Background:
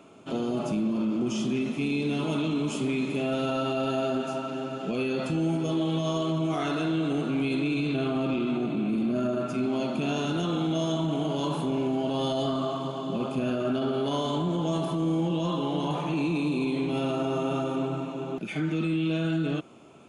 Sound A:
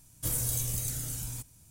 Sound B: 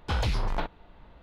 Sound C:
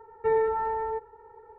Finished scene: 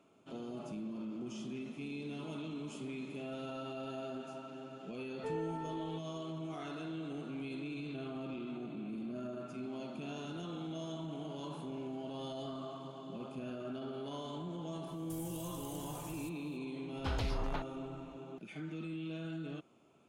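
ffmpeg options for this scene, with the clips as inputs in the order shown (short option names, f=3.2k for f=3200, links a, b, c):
-filter_complex "[0:a]volume=-15dB[a];[1:a]acompressor=threshold=-34dB:ratio=6:attack=3.2:release=140:knee=1:detection=peak[b];[3:a]atrim=end=1.58,asetpts=PTS-STARTPTS,volume=-16dB,afade=t=in:d=0.004:c=hsin,afade=t=out:st=1.576:d=0.004:c=hsin,adelay=4990[c];[b]atrim=end=1.7,asetpts=PTS-STARTPTS,volume=-12dB,afade=t=in:d=0.004:c=hsin,afade=t=out:st=1.696:d=0.004:c=hsin,adelay=14870[d];[2:a]atrim=end=1.22,asetpts=PTS-STARTPTS,volume=-9dB,afade=t=in:d=0.004:c=hsin,afade=t=out:st=1.216:d=0.004:c=hsin,adelay=16960[e];[a][c][d][e]amix=inputs=4:normalize=0"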